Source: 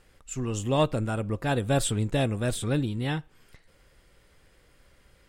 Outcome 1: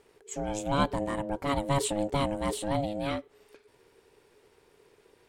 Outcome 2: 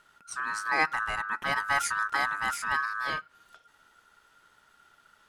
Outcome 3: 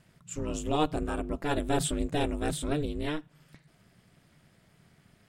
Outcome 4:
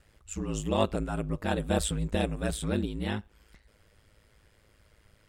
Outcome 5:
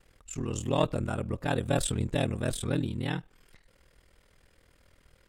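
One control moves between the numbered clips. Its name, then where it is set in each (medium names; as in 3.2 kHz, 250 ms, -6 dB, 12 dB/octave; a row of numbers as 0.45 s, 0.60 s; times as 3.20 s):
ring modulator, frequency: 420 Hz, 1.4 kHz, 150 Hz, 53 Hz, 20 Hz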